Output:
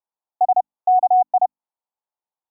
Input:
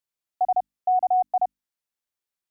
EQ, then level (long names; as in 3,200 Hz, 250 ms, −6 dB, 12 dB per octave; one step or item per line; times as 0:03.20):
high-pass filter 410 Hz 6 dB per octave
low-pass with resonance 880 Hz, resonance Q 3.8
−1.5 dB